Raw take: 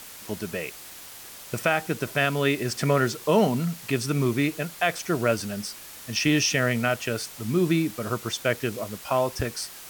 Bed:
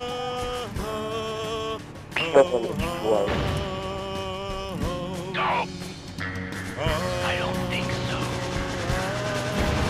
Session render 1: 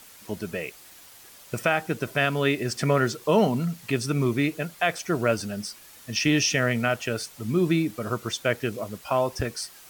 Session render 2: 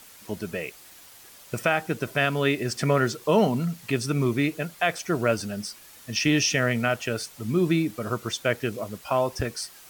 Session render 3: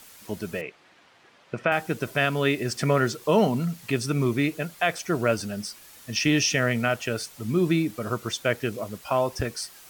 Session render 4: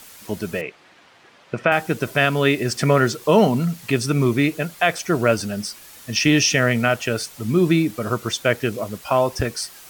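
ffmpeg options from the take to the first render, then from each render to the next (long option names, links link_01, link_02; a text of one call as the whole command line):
ffmpeg -i in.wav -af "afftdn=noise_reduction=7:noise_floor=-43" out.wav
ffmpeg -i in.wav -af anull out.wav
ffmpeg -i in.wav -filter_complex "[0:a]asettb=1/sr,asplit=3[link_01][link_02][link_03];[link_01]atrim=end=0.614[link_04];[link_02]atrim=start=0.61:end=1.72,asetpts=PTS-STARTPTS,afade=type=in:duration=0.004:curve=qsin,afade=type=out:start_time=1.106:duration=0.004:curve=qsin,highpass=130,lowpass=2600[link_05];[link_03]atrim=start=1.716[link_06];[link_04][link_05]acrossfade=duration=0.004:curve1=hsin:curve2=qsin[link_07];[link_07][link_06]acrossfade=duration=0.004:curve1=qsin:curve2=hsin" out.wav
ffmpeg -i in.wav -af "volume=5.5dB" out.wav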